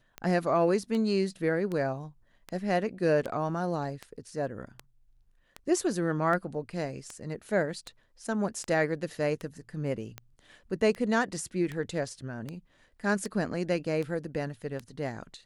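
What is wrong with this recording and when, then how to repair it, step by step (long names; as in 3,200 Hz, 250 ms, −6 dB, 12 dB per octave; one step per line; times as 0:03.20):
scratch tick 78 rpm −22 dBFS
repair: click removal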